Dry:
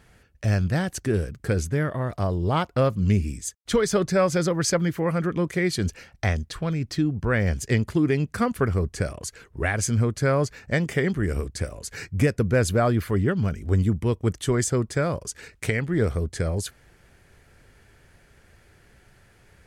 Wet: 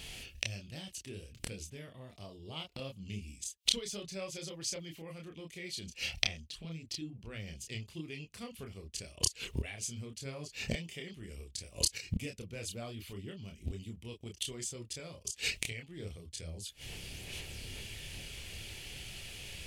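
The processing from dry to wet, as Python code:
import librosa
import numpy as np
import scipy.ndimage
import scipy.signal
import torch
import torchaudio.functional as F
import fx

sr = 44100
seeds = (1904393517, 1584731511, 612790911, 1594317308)

y = fx.gate_flip(x, sr, shuts_db=-25.0, range_db=-27)
y = fx.chorus_voices(y, sr, voices=6, hz=1.2, base_ms=28, depth_ms=3.0, mix_pct=40)
y = fx.high_shelf_res(y, sr, hz=2100.0, db=10.5, q=3.0)
y = y * 10.0 ** (7.5 / 20.0)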